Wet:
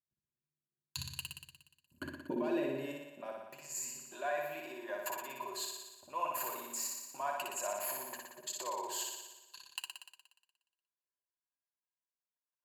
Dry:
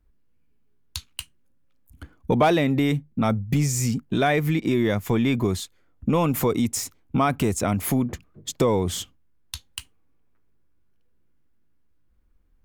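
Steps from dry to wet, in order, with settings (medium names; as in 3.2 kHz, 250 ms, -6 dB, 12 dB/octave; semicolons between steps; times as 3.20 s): high-pass 56 Hz 12 dB/octave; hum notches 60/120/180/240 Hz; gate -53 dBFS, range -22 dB; rippled EQ curve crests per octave 1.4, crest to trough 14 dB; compression 5:1, threshold -33 dBFS, peak gain reduction 20.5 dB; peak limiter -26.5 dBFS, peak gain reduction 11 dB; level held to a coarse grid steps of 22 dB; comb of notches 220 Hz; flutter echo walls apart 10.2 m, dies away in 1.1 s; high-pass sweep 150 Hz -> 750 Hz, 1.59–3.55 s; trim +6 dB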